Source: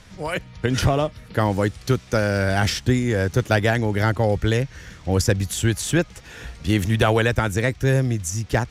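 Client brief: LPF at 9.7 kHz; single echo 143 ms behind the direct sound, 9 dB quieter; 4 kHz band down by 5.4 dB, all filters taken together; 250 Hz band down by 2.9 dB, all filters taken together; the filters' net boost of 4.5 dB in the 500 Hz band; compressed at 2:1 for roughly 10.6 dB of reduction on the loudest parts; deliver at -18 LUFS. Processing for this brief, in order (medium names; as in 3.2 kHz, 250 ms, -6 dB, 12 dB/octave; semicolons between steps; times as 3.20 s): low-pass 9.7 kHz; peaking EQ 250 Hz -6.5 dB; peaking EQ 500 Hz +7 dB; peaking EQ 4 kHz -7.5 dB; compression 2:1, threshold -32 dBFS; delay 143 ms -9 dB; trim +11.5 dB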